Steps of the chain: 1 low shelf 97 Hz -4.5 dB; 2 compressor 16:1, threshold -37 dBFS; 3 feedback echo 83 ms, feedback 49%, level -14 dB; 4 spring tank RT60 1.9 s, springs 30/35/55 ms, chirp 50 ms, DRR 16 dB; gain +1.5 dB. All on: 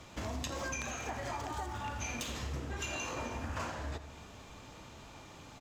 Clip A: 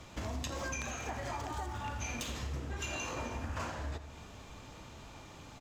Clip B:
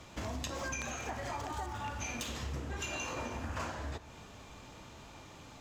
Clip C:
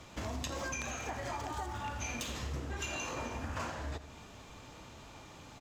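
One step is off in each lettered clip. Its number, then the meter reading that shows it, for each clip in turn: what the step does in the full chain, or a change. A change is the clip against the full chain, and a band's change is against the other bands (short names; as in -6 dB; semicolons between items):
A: 1, 125 Hz band +2.0 dB; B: 3, echo-to-direct -11.0 dB to -16.0 dB; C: 4, echo-to-direct -11.0 dB to -13.0 dB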